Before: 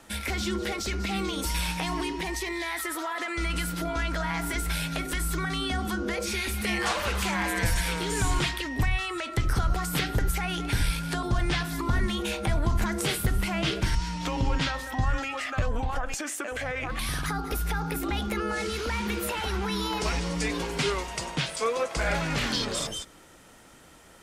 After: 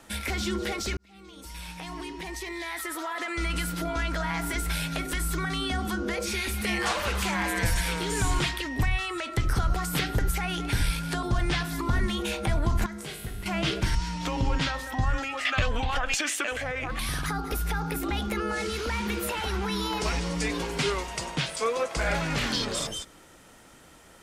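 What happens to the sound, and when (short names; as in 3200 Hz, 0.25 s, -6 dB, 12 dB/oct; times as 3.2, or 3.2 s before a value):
0.97–3.35 fade in
12.86–13.46 resonator 52 Hz, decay 1.4 s, mix 80%
15.45–16.56 bell 3100 Hz +13 dB 1.7 oct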